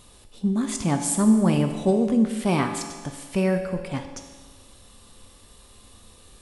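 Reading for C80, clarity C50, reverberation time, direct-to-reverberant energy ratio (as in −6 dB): 9.0 dB, 7.5 dB, 1.5 s, 5.0 dB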